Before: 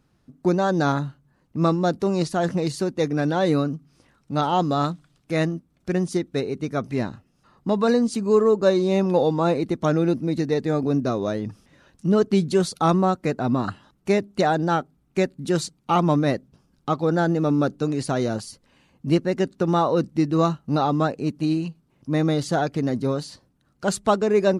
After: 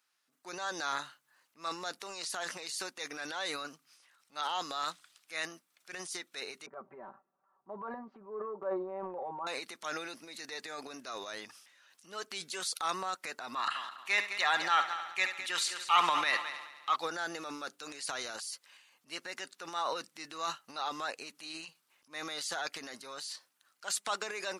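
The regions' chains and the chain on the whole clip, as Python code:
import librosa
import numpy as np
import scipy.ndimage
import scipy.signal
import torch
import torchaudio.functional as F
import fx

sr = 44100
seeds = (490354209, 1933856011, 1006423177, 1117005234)

y = fx.chain(x, sr, fx.lowpass(hz=1000.0, slope=24),
    fx.comb(ms=5.2, depth=0.88), at=(6.66, 9.47))
y = fx.chain(y, sr, fx.band_shelf(hz=1800.0, db=9.5, octaves=2.3),
    fx.notch(hz=1500.0, q=9.1),
    fx.echo_heads(ms=70, heads='first and third', feedback_pct=54, wet_db=-19), at=(13.55, 16.96))
y = scipy.signal.sosfilt(scipy.signal.butter(2, 1500.0, 'highpass', fs=sr, output='sos'), y)
y = fx.high_shelf(y, sr, hz=7900.0, db=5.0)
y = fx.transient(y, sr, attack_db=-4, sustain_db=9)
y = F.gain(torch.from_numpy(y), -3.5).numpy()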